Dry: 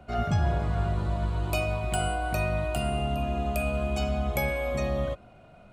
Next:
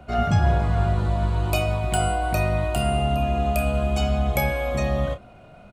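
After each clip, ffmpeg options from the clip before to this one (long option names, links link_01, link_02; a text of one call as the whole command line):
ffmpeg -i in.wav -filter_complex "[0:a]asplit=2[link_01][link_02];[link_02]adelay=30,volume=-10dB[link_03];[link_01][link_03]amix=inputs=2:normalize=0,volume=5dB" out.wav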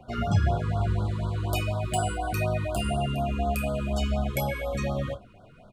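ffmpeg -i in.wav -af "flanger=delay=7.8:depth=2.6:regen=-40:speed=1.6:shape=sinusoidal,afftfilt=real='re*(1-between(b*sr/1024,660*pow(2300/660,0.5+0.5*sin(2*PI*4.1*pts/sr))/1.41,660*pow(2300/660,0.5+0.5*sin(2*PI*4.1*pts/sr))*1.41))':imag='im*(1-between(b*sr/1024,660*pow(2300/660,0.5+0.5*sin(2*PI*4.1*pts/sr))/1.41,660*pow(2300/660,0.5+0.5*sin(2*PI*4.1*pts/sr))*1.41))':win_size=1024:overlap=0.75" out.wav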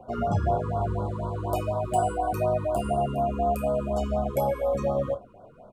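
ffmpeg -i in.wav -af "equalizer=frequency=250:width_type=o:width=1:gain=3,equalizer=frequency=500:width_type=o:width=1:gain=10,equalizer=frequency=1000:width_type=o:width=1:gain=10,equalizer=frequency=2000:width_type=o:width=1:gain=-9,equalizer=frequency=4000:width_type=o:width=1:gain=-6,volume=-4.5dB" out.wav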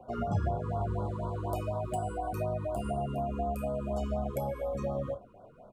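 ffmpeg -i in.wav -filter_complex "[0:a]acrossover=split=250[link_01][link_02];[link_02]acompressor=threshold=-28dB:ratio=6[link_03];[link_01][link_03]amix=inputs=2:normalize=0,volume=-4dB" out.wav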